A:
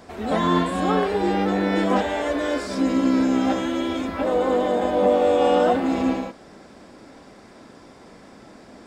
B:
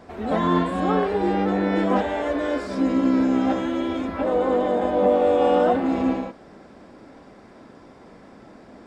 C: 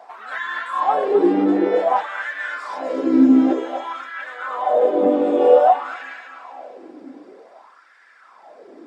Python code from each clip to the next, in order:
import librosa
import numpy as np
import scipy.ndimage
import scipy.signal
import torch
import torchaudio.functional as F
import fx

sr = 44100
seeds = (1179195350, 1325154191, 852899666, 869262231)

y1 = fx.high_shelf(x, sr, hz=3500.0, db=-11.0)
y2 = fx.dereverb_blind(y1, sr, rt60_s=0.53)
y2 = fx.echo_thinned(y2, sr, ms=249, feedback_pct=45, hz=170.0, wet_db=-7.0)
y2 = fx.filter_lfo_highpass(y2, sr, shape='sine', hz=0.53, low_hz=280.0, high_hz=1700.0, q=5.5)
y2 = y2 * 10.0 ** (-2.5 / 20.0)